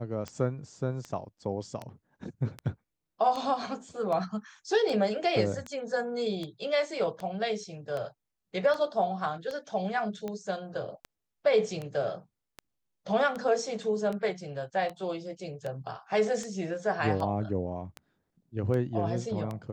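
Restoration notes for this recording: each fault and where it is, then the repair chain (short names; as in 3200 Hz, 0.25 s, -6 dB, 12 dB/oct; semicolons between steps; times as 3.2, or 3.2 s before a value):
tick 78 rpm -23 dBFS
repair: de-click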